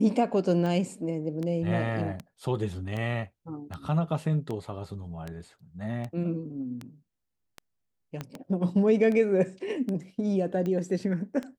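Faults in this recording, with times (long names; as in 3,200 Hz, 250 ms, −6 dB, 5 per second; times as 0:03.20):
scratch tick 78 rpm −22 dBFS
0:08.21: click −20 dBFS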